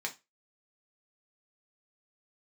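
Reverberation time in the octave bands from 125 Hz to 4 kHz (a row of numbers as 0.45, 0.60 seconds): 0.25, 0.20, 0.20, 0.25, 0.25, 0.20 seconds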